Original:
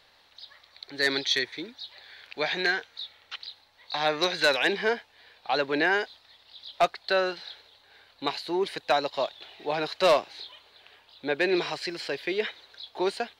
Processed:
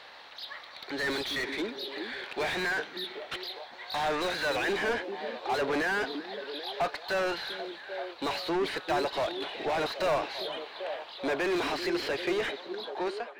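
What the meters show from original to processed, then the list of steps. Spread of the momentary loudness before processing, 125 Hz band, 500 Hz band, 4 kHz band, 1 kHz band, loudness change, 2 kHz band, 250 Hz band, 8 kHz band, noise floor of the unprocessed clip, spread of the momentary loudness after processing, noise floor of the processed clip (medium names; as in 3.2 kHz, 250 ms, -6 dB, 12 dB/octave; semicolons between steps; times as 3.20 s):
19 LU, -0.5 dB, -3.0 dB, -4.5 dB, -2.0 dB, -4.5 dB, -3.0 dB, -1.0 dB, -2.5 dB, -61 dBFS, 9 LU, -48 dBFS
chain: fade out at the end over 1.28 s; overdrive pedal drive 31 dB, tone 1.5 kHz, clips at -13 dBFS; repeats whose band climbs or falls 392 ms, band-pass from 290 Hz, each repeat 0.7 oct, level -5 dB; trim -8 dB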